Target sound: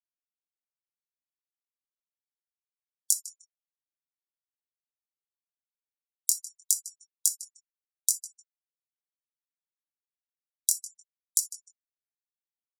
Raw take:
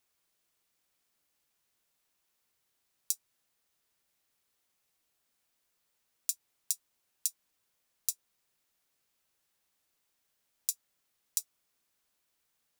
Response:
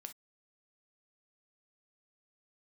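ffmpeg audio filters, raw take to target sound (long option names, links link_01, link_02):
-filter_complex "[0:a]lowpass=9800,equalizer=frequency=3700:width_type=o:width=0.39:gain=-8.5,asplit=2[link_01][link_02];[link_02]adelay=152,lowpass=frequency=4400:poles=1,volume=-16.5dB,asplit=2[link_03][link_04];[link_04]adelay=152,lowpass=frequency=4400:poles=1,volume=0.37,asplit=2[link_05][link_06];[link_06]adelay=152,lowpass=frequency=4400:poles=1,volume=0.37[link_07];[link_01][link_03][link_05][link_07]amix=inputs=4:normalize=0,acompressor=threshold=-35dB:ratio=8,flanger=delay=17.5:depth=6.8:speed=0.71,aexciter=amount=6.1:drive=7.1:freq=3700,asplit=2[link_08][link_09];[1:a]atrim=start_sample=2205[link_10];[link_09][link_10]afir=irnorm=-1:irlink=0,volume=10dB[link_11];[link_08][link_11]amix=inputs=2:normalize=0,afftfilt=real='re*gte(hypot(re,im),0.0112)':imag='im*gte(hypot(re,im),0.0112)':win_size=1024:overlap=0.75,volume=-8dB"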